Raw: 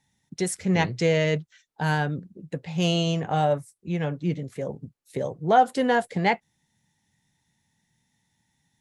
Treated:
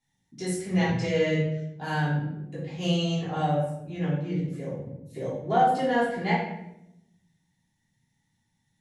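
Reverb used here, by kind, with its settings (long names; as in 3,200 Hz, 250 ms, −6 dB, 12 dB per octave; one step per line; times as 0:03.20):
rectangular room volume 230 cubic metres, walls mixed, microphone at 3.2 metres
level −13.5 dB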